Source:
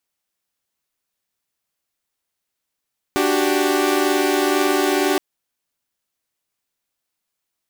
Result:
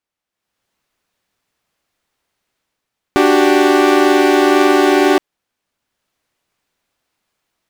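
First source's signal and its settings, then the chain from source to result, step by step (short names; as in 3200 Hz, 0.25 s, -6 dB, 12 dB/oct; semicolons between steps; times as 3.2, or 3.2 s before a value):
chord D4/F#4/G4 saw, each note -18 dBFS 2.02 s
LPF 2700 Hz 6 dB/oct; AGC gain up to 13 dB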